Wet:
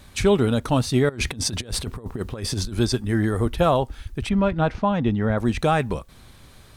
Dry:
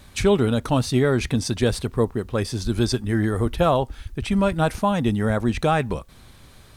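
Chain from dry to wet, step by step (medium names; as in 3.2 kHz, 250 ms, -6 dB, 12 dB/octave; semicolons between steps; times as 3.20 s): 1.09–2.73 s: compressor with a negative ratio -27 dBFS, ratio -0.5; 4.29–5.38 s: distance through air 200 m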